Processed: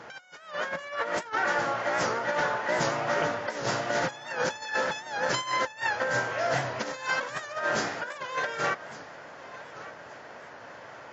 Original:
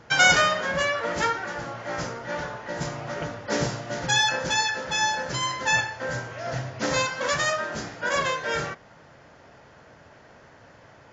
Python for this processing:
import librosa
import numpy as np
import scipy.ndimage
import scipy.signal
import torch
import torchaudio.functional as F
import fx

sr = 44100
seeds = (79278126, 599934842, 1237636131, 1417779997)

y = fx.highpass(x, sr, hz=660.0, slope=6)
y = fx.high_shelf(y, sr, hz=2600.0, db=-7.5)
y = fx.over_compress(y, sr, threshold_db=-35.0, ratio=-0.5)
y = fx.echo_feedback(y, sr, ms=1165, feedback_pct=31, wet_db=-17)
y = fx.record_warp(y, sr, rpm=78.0, depth_cents=100.0)
y = y * librosa.db_to_amplitude(5.0)